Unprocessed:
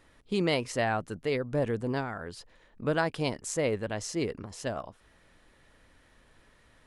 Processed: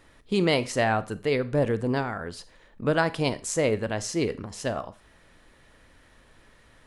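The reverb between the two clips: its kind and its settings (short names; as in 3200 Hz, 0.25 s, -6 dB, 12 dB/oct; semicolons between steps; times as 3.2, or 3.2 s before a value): Schroeder reverb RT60 0.35 s, combs from 28 ms, DRR 14.5 dB; gain +4.5 dB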